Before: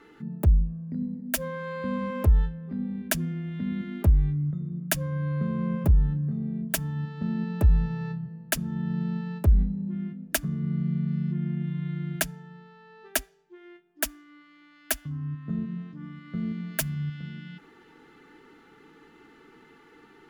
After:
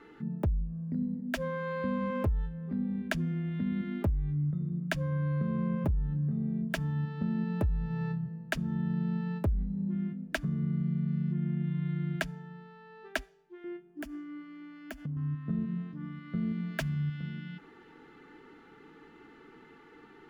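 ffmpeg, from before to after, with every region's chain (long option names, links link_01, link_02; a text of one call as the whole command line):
ffmpeg -i in.wav -filter_complex "[0:a]asettb=1/sr,asplit=3[link_01][link_02][link_03];[link_01]atrim=end=13.644[link_04];[link_02]atrim=start=13.64:end=15.17,asetpts=PTS-STARTPTS,afade=type=in:duration=0.004:curve=qsin,afade=type=out:start_time=1.526:duration=0.004:curve=qsin,equalizer=frequency=190:width_type=o:width=2.6:gain=14,bandreject=frequency=3800:width=7.5,acompressor=threshold=-33dB:ratio=16:attack=3.2:release=140:knee=1:detection=peak[link_05];[link_03]atrim=start=15.166[link_06];[link_04][link_05]acrossfade=duration=0.004:curve1=hsin:curve2=qsin[link_07];[link_07][link_06]acrossfade=duration=0.004:curve1=qsin:curve2=hsin,acrossover=split=5900[link_08][link_09];[link_09]acompressor=threshold=-34dB:ratio=4:attack=1:release=60[link_10];[link_08][link_10]amix=inputs=2:normalize=0,highshelf=frequency=5000:gain=-10.5,acompressor=threshold=-27dB:ratio=5" out.wav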